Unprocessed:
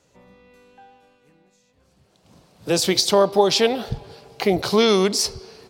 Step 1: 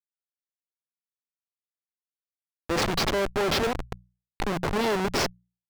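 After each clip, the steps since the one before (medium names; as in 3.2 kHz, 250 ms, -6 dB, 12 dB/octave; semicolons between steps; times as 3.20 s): Schmitt trigger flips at -19.5 dBFS; overdrive pedal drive 10 dB, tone 3.4 kHz, clips at -16.5 dBFS; hum notches 60/120/180 Hz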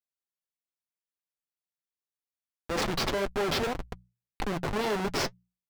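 flange 1.8 Hz, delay 3.5 ms, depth 5.2 ms, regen -44%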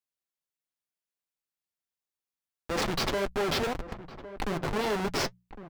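echo from a far wall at 190 m, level -13 dB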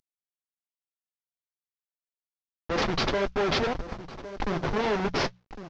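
CVSD coder 32 kbps; trim +3.5 dB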